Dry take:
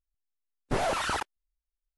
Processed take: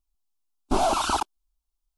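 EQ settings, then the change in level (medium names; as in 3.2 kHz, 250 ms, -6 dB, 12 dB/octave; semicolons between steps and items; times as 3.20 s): treble shelf 9.5 kHz -3 dB; static phaser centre 500 Hz, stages 6; +8.5 dB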